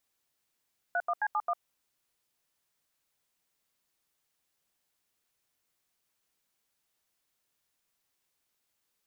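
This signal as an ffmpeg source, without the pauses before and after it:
-f lavfi -i "aevalsrc='0.0355*clip(min(mod(t,0.133),0.052-mod(t,0.133))/0.002,0,1)*(eq(floor(t/0.133),0)*(sin(2*PI*697*mod(t,0.133))+sin(2*PI*1477*mod(t,0.133)))+eq(floor(t/0.133),1)*(sin(2*PI*697*mod(t,0.133))+sin(2*PI*1209*mod(t,0.133)))+eq(floor(t/0.133),2)*(sin(2*PI*852*mod(t,0.133))+sin(2*PI*1633*mod(t,0.133)))+eq(floor(t/0.133),3)*(sin(2*PI*852*mod(t,0.133))+sin(2*PI*1209*mod(t,0.133)))+eq(floor(t/0.133),4)*(sin(2*PI*697*mod(t,0.133))+sin(2*PI*1209*mod(t,0.133))))':d=0.665:s=44100"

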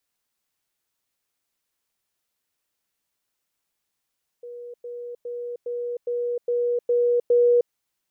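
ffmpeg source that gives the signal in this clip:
-f lavfi -i "aevalsrc='pow(10,(-35+3*floor(t/0.41))/20)*sin(2*PI*482*t)*clip(min(mod(t,0.41),0.31-mod(t,0.41))/0.005,0,1)':d=3.28:s=44100"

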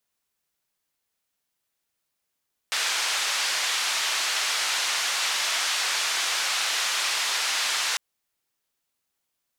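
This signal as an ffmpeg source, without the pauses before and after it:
-f lavfi -i "anoisesrc=c=white:d=5.25:r=44100:seed=1,highpass=f=970,lowpass=f=5500,volume=-14.6dB"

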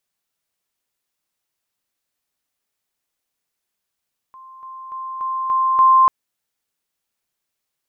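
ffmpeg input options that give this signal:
-f lavfi -i "aevalsrc='pow(10,(-38.5+6*floor(t/0.29))/20)*sin(2*PI*1050*t)':d=1.74:s=44100"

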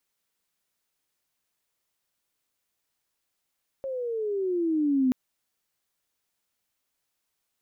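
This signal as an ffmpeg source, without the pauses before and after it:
-f lavfi -i "aevalsrc='pow(10,(-19+10.5*(t/1.28-1))/20)*sin(2*PI*546*1.28/(-13.5*log(2)/12)*(exp(-13.5*log(2)/12*t/1.28)-1))':d=1.28:s=44100"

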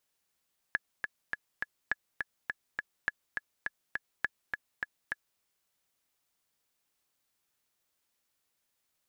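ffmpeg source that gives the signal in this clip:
-f lavfi -i "aevalsrc='pow(10,(-15-4.5*gte(mod(t,4*60/206),60/206))/20)*sin(2*PI*1700*mod(t,60/206))*exp(-6.91*mod(t,60/206)/0.03)':d=4.66:s=44100"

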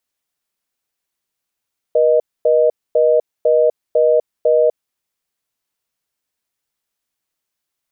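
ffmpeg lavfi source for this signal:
-f lavfi -i "aevalsrc='0.237*(sin(2*PI*480*t)+sin(2*PI*620*t))*clip(min(mod(t,0.5),0.25-mod(t,0.5))/0.005,0,1)':d=2.99:s=44100"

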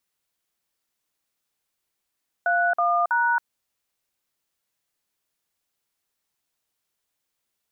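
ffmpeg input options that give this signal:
-f lavfi -i "aevalsrc='0.0891*clip(min(mod(t,0.324),0.274-mod(t,0.324))/0.002,0,1)*(eq(floor(t/0.324),0)*(sin(2*PI*697*mod(t,0.324))+sin(2*PI*1477*mod(t,0.324)))+eq(floor(t/0.324),1)*(sin(2*PI*697*mod(t,0.324))+sin(2*PI*1209*mod(t,0.324)))+eq(floor(t/0.324),2)*(sin(2*PI*941*mod(t,0.324))+sin(2*PI*1477*mod(t,0.324))))':d=0.972:s=44100"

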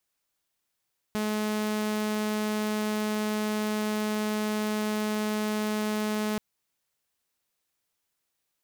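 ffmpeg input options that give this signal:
-f lavfi -i "aevalsrc='0.0631*(2*mod(213*t,1)-1)':d=5.23:s=44100"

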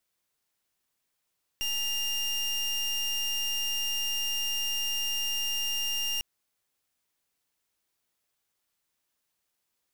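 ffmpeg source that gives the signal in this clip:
-f lavfi -i "aevalsrc='0.0316*(2*lt(mod(2810*t,1),0.29)-1)':d=4.6:s=44100"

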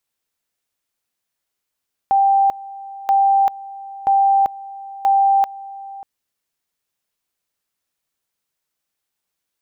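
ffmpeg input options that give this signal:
-f lavfi -i "aevalsrc='pow(10,(-11-19.5*gte(mod(t,0.98),0.39))/20)*sin(2*PI*787*t)':d=3.92:s=44100"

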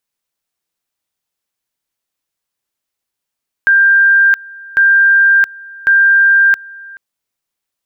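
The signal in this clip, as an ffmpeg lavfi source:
-f lavfi -i "aevalsrc='pow(10,(-5.5-24*gte(mod(t,1.1),0.67))/20)*sin(2*PI*1590*t)':d=3.3:s=44100"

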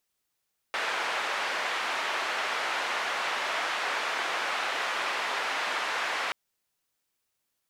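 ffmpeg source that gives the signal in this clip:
-f lavfi -i "anoisesrc=c=white:d=5.58:r=44100:seed=1,highpass=f=660,lowpass=f=2000,volume=-14dB"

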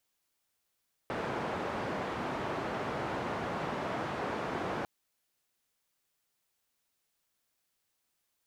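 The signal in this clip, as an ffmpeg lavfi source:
-f lavfi -i "anoisesrc=c=white:d=3.75:r=44100:seed=1,highpass=f=99,lowpass=f=1000,volume=-17.3dB"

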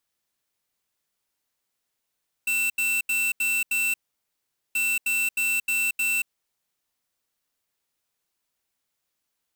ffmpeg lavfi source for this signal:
-f lavfi -i "aevalsrc='0.0631*(2*lt(mod(2680*t,1),0.5)-1)*clip(min(mod(mod(t,2.28),0.31),0.23-mod(mod(t,2.28),0.31))/0.005,0,1)*lt(mod(t,2.28),1.55)':d=4.56:s=44100"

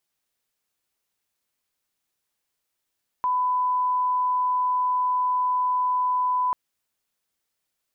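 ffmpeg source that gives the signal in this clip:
-f lavfi -i "sine=f=1000:d=3.29:r=44100,volume=-1.94dB"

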